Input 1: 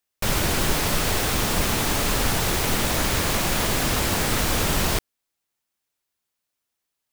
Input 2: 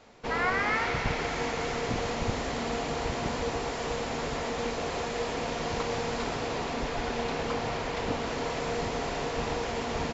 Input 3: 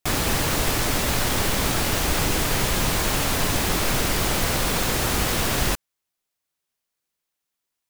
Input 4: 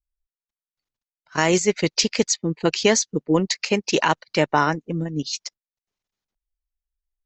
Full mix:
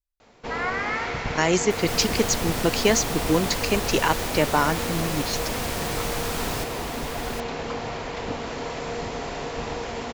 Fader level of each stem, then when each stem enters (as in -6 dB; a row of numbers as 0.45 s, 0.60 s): -8.5 dB, +0.5 dB, -13.5 dB, -2.5 dB; 1.65 s, 0.20 s, 1.65 s, 0.00 s